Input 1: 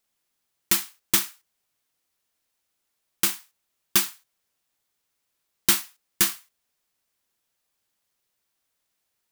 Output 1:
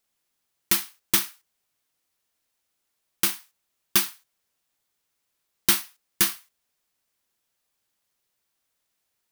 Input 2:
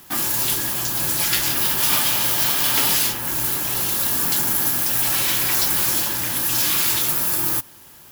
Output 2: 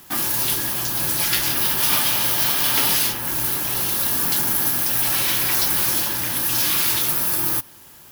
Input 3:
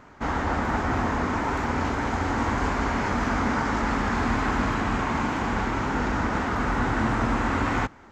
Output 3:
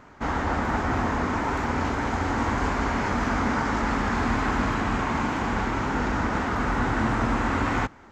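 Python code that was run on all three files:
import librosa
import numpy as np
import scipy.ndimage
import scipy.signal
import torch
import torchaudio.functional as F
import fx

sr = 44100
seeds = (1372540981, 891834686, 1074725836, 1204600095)

y = fx.dynamic_eq(x, sr, hz=7300.0, q=5.4, threshold_db=-44.0, ratio=4.0, max_db=-6)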